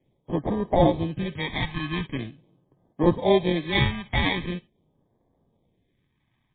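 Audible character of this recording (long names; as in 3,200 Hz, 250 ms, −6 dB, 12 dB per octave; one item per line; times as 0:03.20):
aliases and images of a low sample rate 1,400 Hz, jitter 0%
phaser sweep stages 2, 0.43 Hz, lowest notch 480–2,500 Hz
MP3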